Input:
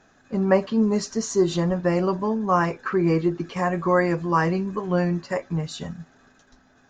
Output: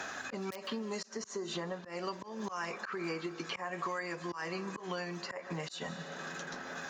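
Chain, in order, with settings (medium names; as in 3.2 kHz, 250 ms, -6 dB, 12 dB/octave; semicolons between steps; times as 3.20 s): in parallel at -8 dB: integer overflow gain 8 dB; on the sum: compression 16:1, threshold -22 dBFS, peak gain reduction 12.5 dB; high-pass 1.4 kHz 6 dB/octave; on a send at -18 dB: reverberation RT60 3.8 s, pre-delay 105 ms; on the sum: slow attack 250 ms; three bands compressed up and down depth 100%; trim +1 dB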